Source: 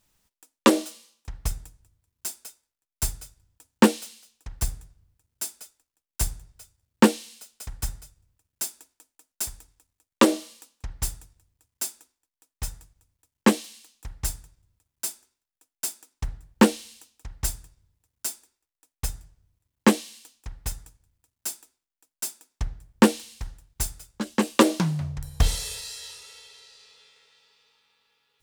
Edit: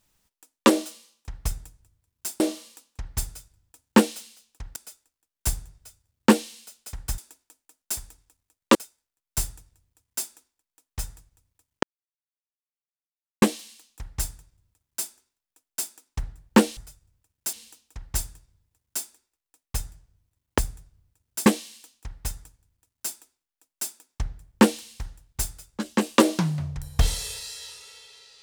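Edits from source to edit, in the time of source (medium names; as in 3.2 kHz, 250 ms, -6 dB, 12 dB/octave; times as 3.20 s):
2.40–3.04 s: swap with 10.25–11.03 s
4.62–5.50 s: move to 19.87 s
7.92–8.68 s: move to 16.82 s
13.47 s: insert silence 1.59 s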